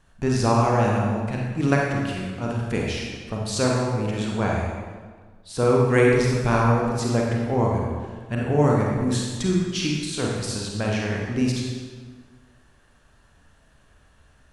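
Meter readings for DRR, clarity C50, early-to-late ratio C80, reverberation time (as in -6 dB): -2.5 dB, -0.5 dB, 2.0 dB, 1.5 s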